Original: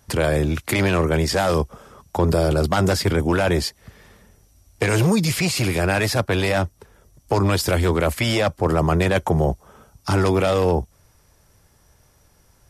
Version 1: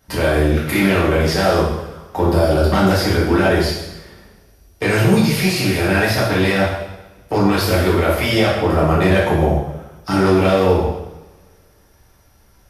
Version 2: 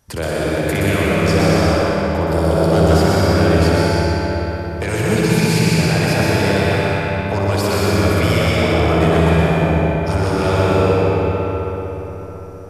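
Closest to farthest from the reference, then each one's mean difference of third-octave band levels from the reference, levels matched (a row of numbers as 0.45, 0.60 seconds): 1, 2; 6.0, 9.5 decibels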